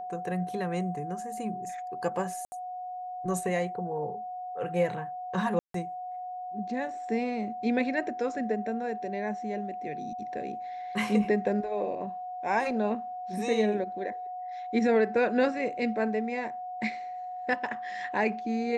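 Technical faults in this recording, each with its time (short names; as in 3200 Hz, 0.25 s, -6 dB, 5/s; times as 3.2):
tone 730 Hz -35 dBFS
2.45–2.52 gap 70 ms
5.59–5.74 gap 0.153 s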